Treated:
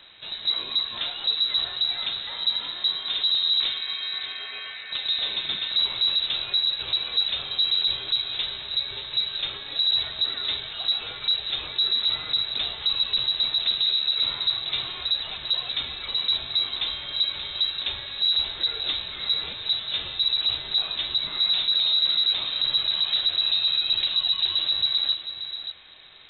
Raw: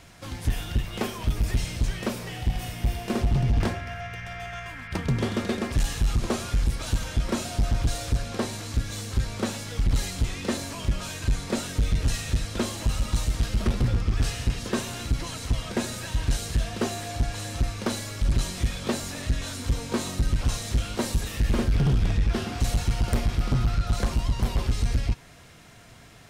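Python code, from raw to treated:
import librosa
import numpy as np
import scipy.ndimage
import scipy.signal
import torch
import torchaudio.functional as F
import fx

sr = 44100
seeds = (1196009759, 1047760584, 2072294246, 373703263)

y = 10.0 ** (-19.5 / 20.0) * np.tanh(x / 10.0 ** (-19.5 / 20.0))
y = y + 10.0 ** (-10.0 / 20.0) * np.pad(y, (int(582 * sr / 1000.0), 0))[:len(y)]
y = fx.freq_invert(y, sr, carrier_hz=3900)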